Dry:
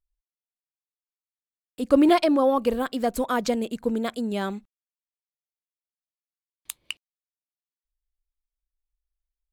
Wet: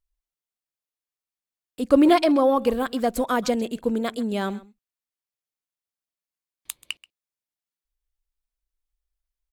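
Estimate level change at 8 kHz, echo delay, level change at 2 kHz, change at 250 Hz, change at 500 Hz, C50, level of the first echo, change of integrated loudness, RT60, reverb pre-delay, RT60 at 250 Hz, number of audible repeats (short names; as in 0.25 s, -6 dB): +1.5 dB, 0.132 s, +1.5 dB, +1.5 dB, +1.5 dB, none, -20.0 dB, +1.5 dB, none, none, none, 1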